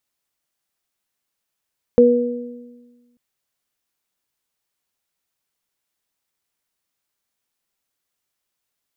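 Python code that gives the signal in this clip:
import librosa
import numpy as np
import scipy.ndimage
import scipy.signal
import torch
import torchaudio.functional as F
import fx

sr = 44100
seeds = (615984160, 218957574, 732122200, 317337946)

y = fx.additive(sr, length_s=1.19, hz=242.0, level_db=-12.5, upper_db=(6.0,), decay_s=1.51, upper_decays_s=(1.08,))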